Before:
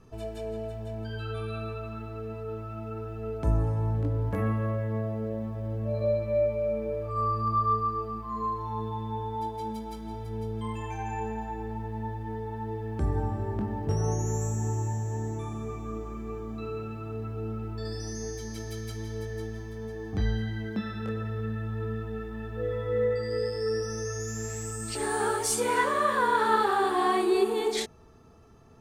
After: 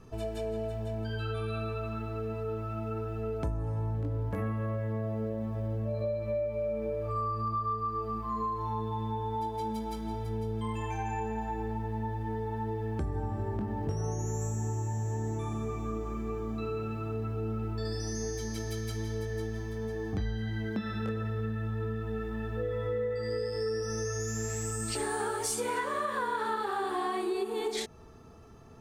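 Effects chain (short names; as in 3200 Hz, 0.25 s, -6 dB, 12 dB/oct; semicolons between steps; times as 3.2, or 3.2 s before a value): compressor, threshold -32 dBFS, peak gain reduction 13 dB; gain +2.5 dB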